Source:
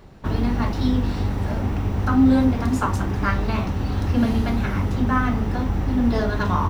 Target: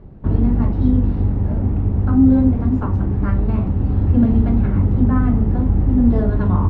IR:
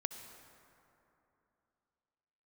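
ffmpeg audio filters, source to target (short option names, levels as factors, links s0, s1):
-af "lowpass=2900,tiltshelf=f=710:g=10,dynaudnorm=f=320:g=9:m=3.76,volume=0.794"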